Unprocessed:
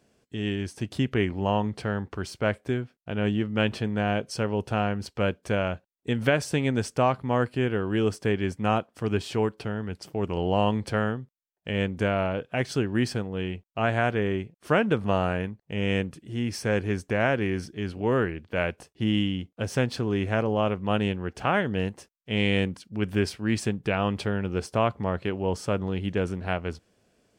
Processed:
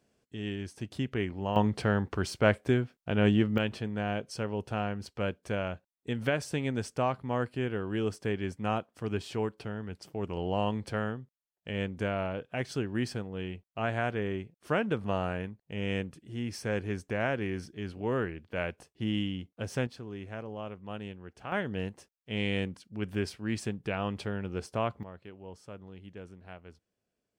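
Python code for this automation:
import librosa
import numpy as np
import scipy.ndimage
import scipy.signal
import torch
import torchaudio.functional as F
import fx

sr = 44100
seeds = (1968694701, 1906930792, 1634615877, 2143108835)

y = fx.gain(x, sr, db=fx.steps((0.0, -7.0), (1.56, 1.5), (3.58, -6.5), (19.87, -15.0), (21.52, -7.0), (25.03, -19.0)))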